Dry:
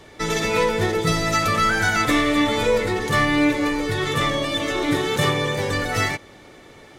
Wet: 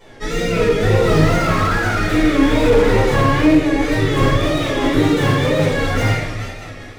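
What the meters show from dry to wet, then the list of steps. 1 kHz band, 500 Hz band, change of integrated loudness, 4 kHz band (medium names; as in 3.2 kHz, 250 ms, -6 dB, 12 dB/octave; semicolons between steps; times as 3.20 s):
+2.0 dB, +6.0 dB, +4.5 dB, -0.5 dB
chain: on a send: multi-head delay 105 ms, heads first and third, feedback 62%, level -14.5 dB; on the sum: rotary cabinet horn 0.6 Hz, later 5 Hz, at 3.45 s; wow and flutter 120 cents; simulated room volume 190 m³, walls mixed, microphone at 4.8 m; slew-rate limiter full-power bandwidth 420 Hz; trim -7 dB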